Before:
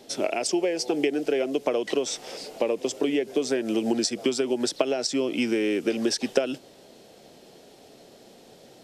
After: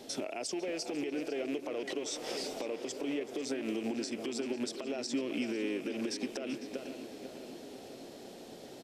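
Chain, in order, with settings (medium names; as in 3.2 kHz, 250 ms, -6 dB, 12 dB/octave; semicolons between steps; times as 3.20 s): rattle on loud lows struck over -37 dBFS, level -27 dBFS; delay 382 ms -19.5 dB; compression 5:1, threshold -33 dBFS, peak gain reduction 15.5 dB; peak limiter -27.5 dBFS, peak gain reduction 10 dB; peaking EQ 270 Hz +3.5 dB 0.25 oct; on a send: tape echo 499 ms, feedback 74%, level -9 dB, low-pass 2.7 kHz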